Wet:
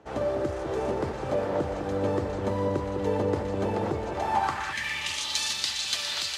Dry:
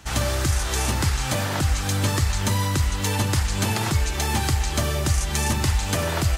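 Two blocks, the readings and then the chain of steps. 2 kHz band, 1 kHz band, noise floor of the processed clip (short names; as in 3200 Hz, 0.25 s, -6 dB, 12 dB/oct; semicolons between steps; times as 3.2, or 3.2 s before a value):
-5.5 dB, -1.5 dB, -34 dBFS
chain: echo with dull and thin repeats by turns 0.204 s, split 1200 Hz, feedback 77%, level -6 dB; band-pass sweep 470 Hz -> 4000 Hz, 4.03–5.29; spectral repair 4.76–5.46, 240–1600 Hz after; gain +6 dB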